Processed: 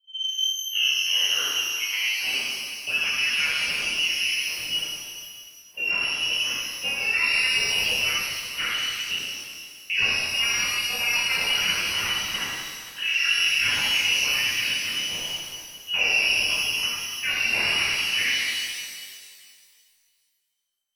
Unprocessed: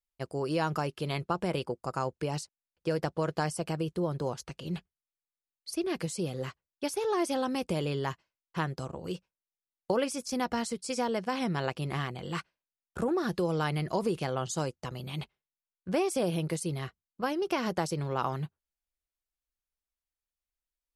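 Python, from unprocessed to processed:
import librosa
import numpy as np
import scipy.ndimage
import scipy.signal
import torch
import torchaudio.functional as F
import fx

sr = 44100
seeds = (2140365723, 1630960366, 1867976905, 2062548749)

y = fx.tape_start_head(x, sr, length_s=2.37)
y = fx.env_lowpass(y, sr, base_hz=2000.0, full_db=-31.0)
y = fx.freq_invert(y, sr, carrier_hz=3100)
y = fx.rev_shimmer(y, sr, seeds[0], rt60_s=2.0, semitones=12, shimmer_db=-8, drr_db=-10.5)
y = y * librosa.db_to_amplitude(-3.5)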